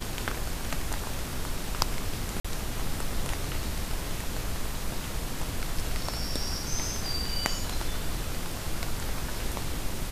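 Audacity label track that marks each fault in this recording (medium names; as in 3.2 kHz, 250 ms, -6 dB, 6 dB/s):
2.400000	2.440000	dropout 45 ms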